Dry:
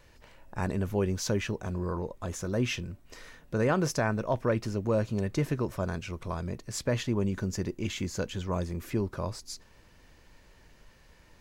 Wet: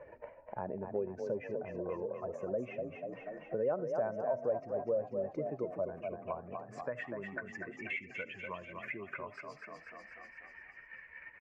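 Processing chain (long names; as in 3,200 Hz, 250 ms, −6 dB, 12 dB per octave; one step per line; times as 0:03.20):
expanding power law on the bin magnitudes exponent 1.7
band-pass filter sweep 600 Hz → 2,100 Hz, 0:06.20–0:07.43
high shelf with overshoot 2,900 Hz −7 dB, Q 3
echo with shifted repeats 244 ms, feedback 50%, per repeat +30 Hz, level −7.5 dB
on a send at −19 dB: convolution reverb, pre-delay 30 ms
on the sum: multiband upward and downward compressor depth 70%
level +1 dB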